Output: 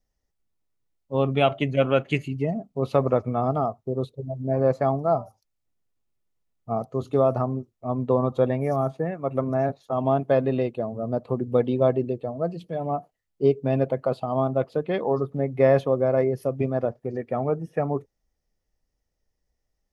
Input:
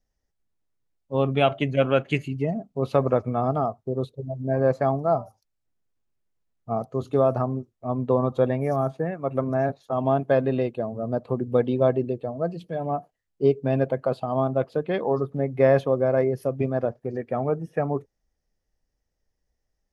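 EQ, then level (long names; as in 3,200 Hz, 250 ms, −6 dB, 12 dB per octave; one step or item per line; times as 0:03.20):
notch filter 1,600 Hz, Q 13
0.0 dB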